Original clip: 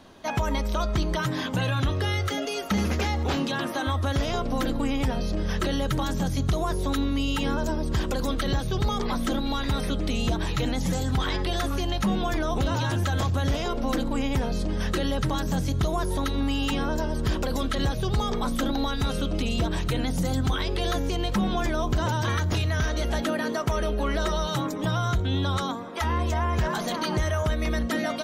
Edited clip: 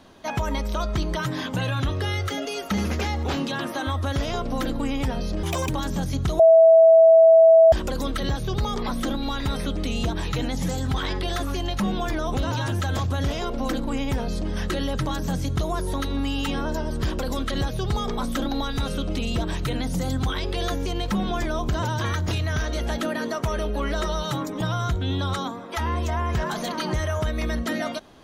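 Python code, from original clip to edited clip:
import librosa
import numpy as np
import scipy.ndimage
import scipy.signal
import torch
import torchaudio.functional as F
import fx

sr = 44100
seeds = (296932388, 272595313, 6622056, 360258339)

y = fx.edit(x, sr, fx.speed_span(start_s=5.43, length_s=0.5, speed=1.9),
    fx.bleep(start_s=6.63, length_s=1.33, hz=653.0, db=-9.0), tone=tone)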